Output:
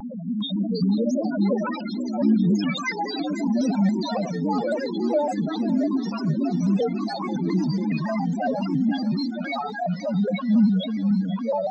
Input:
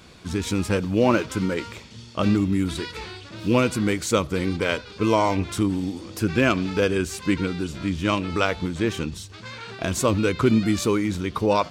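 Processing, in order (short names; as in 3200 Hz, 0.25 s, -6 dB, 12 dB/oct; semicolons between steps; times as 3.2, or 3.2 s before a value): zero-crossing step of -23 dBFS; steep high-pass 200 Hz 48 dB/oct; low shelf 330 Hz +11.5 dB; limiter -13 dBFS, peak gain reduction 11.5 dB; transient shaper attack -7 dB, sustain +10 dB; fixed phaser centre 1800 Hz, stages 8; loudest bins only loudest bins 2; echoes that change speed 0.41 s, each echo +4 st, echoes 2, each echo -6 dB; on a send: thinning echo 0.489 s, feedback 82%, high-pass 670 Hz, level -13.5 dB; on the sum: shaped vibrato square 3.6 Hz, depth 100 cents; gain +7.5 dB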